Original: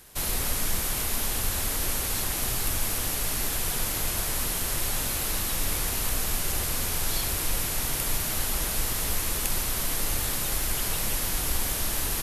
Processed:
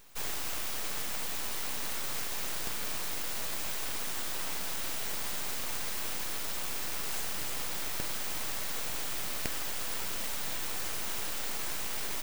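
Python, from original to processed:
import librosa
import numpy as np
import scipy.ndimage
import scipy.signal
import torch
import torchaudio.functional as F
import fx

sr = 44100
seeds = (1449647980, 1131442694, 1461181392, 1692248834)

y = scipy.signal.sosfilt(scipy.signal.butter(4, 1400.0, 'highpass', fs=sr, output='sos'), x)
y = np.abs(y)
y = F.gain(torch.from_numpy(y), -2.0).numpy()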